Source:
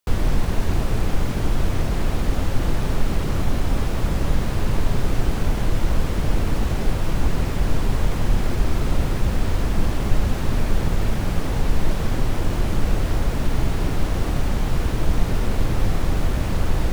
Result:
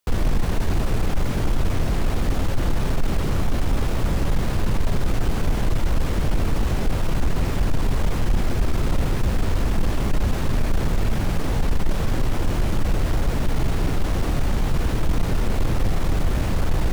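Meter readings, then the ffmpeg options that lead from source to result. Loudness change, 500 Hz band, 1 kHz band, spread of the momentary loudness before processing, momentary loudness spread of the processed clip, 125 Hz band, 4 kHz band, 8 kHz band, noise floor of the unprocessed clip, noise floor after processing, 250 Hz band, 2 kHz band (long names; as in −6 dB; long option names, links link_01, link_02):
−0.5 dB, −0.5 dB, −0.5 dB, 1 LU, 1 LU, −0.5 dB, −0.5 dB, −0.5 dB, −24 dBFS, −23 dBFS, −0.5 dB, −0.5 dB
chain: -af "asoftclip=type=tanh:threshold=-13dB,volume=1.5dB"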